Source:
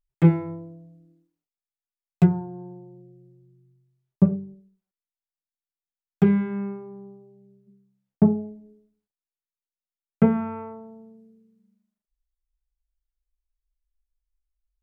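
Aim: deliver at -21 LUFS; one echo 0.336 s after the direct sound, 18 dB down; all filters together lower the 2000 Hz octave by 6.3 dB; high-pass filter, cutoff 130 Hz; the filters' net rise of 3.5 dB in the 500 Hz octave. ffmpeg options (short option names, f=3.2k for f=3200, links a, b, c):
-af "highpass=130,equalizer=f=500:t=o:g=5,equalizer=f=2k:t=o:g=-8.5,aecho=1:1:336:0.126,volume=2.5dB"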